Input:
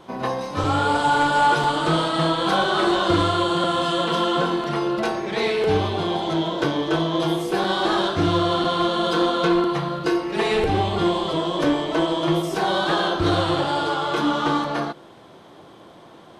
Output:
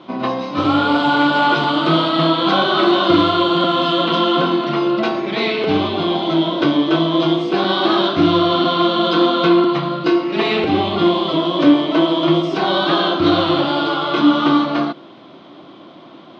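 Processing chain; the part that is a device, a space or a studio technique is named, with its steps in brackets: kitchen radio (cabinet simulation 180–4300 Hz, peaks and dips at 280 Hz +5 dB, 460 Hz -9 dB, 850 Hz -7 dB, 1.7 kHz -8 dB); trim +7.5 dB

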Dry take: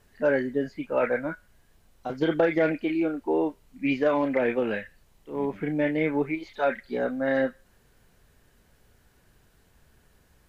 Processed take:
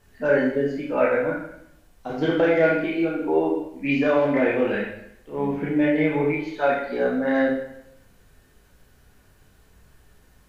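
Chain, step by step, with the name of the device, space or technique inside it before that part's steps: bathroom (reverberation RT60 0.75 s, pre-delay 12 ms, DRR -2.5 dB)

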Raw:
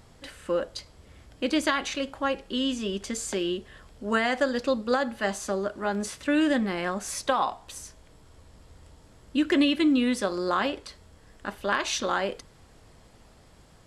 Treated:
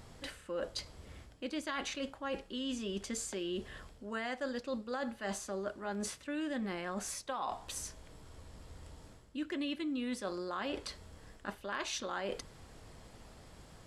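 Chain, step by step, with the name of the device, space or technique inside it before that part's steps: compression on the reversed sound (reverse; compression 6:1, threshold -36 dBFS, peak gain reduction 16.5 dB; reverse)

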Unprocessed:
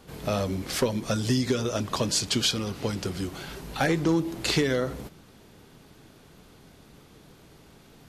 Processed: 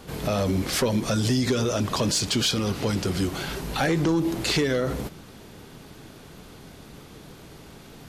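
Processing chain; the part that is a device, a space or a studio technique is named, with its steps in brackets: soft clipper into limiter (saturation -15.5 dBFS, distortion -22 dB; peak limiter -23.5 dBFS, peak gain reduction 6.5 dB); trim +7.5 dB

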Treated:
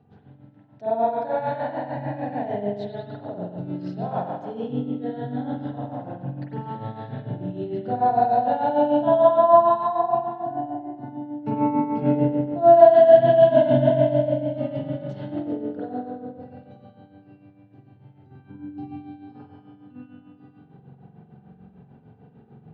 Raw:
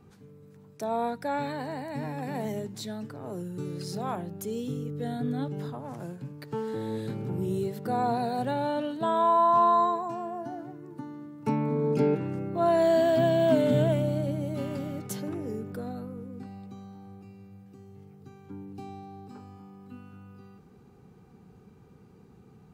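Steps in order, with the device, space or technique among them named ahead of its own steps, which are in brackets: combo amplifier with spring reverb and tremolo (spring tank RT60 1.5 s, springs 44 ms, chirp 65 ms, DRR -8 dB; tremolo 6.7 Hz, depth 64%; cabinet simulation 89–3500 Hz, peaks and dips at 130 Hz +6 dB, 370 Hz -6 dB, 690 Hz +7 dB, 1.2 kHz -10 dB, 2.3 kHz -9 dB); trim -1 dB

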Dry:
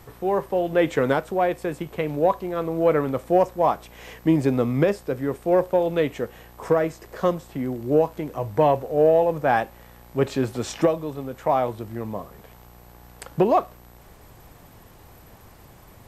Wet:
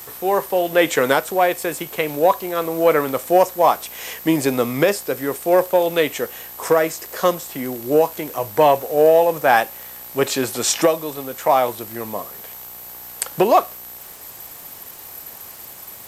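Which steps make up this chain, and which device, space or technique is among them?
turntable without a phono preamp (RIAA curve recording; white noise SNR 31 dB); trim +6.5 dB

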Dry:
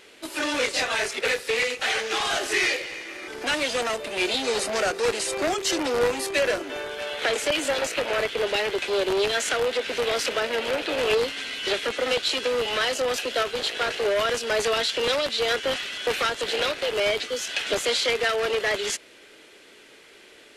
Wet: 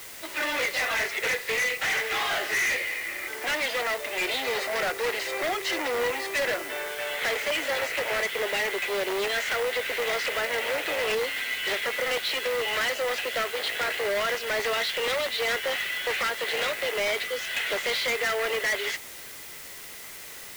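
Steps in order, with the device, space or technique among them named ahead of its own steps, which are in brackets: drive-through speaker (band-pass 470–3700 Hz; peaking EQ 2 kHz +10 dB 0.23 oct; hard clipper -23.5 dBFS, distortion -9 dB; white noise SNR 14 dB)

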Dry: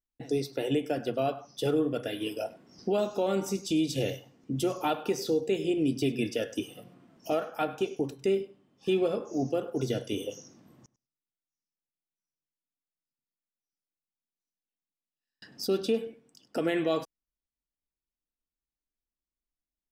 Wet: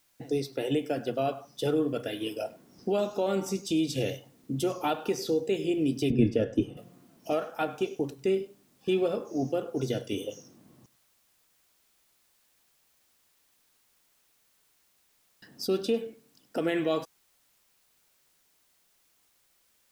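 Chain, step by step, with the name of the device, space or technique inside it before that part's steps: plain cassette with noise reduction switched in (tape noise reduction on one side only decoder only; wow and flutter 28 cents; white noise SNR 36 dB); 6.10–6.77 s: tilt EQ -4 dB/octave

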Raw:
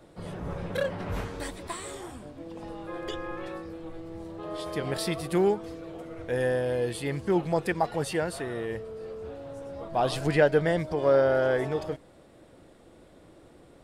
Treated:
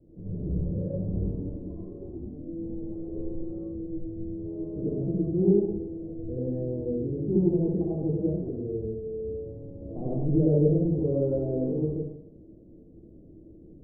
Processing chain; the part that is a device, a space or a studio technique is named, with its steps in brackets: next room (low-pass 370 Hz 24 dB/octave; reverberation RT60 0.80 s, pre-delay 62 ms, DRR -7 dB); trim -1.5 dB

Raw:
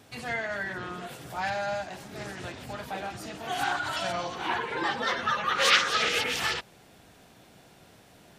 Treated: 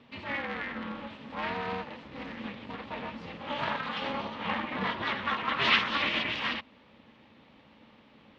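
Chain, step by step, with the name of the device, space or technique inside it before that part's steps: ring modulator pedal into a guitar cabinet (polarity switched at an audio rate 140 Hz; cabinet simulation 97–3400 Hz, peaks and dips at 220 Hz +8 dB, 370 Hz -9 dB, 690 Hz -8 dB, 1.5 kHz -7 dB)

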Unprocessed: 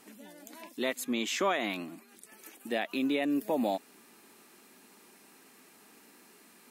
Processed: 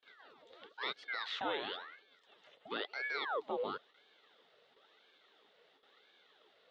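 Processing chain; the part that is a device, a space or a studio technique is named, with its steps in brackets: voice changer toy (ring modulator with a swept carrier 1.1 kHz, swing 80%, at 0.98 Hz; cabinet simulation 410–3600 Hz, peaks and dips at 430 Hz +7 dB, 700 Hz -3 dB, 1 kHz -8 dB, 1.6 kHz -4 dB, 2.4 kHz -8 dB, 3.6 kHz +8 dB); gate with hold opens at -56 dBFS; trim -2 dB

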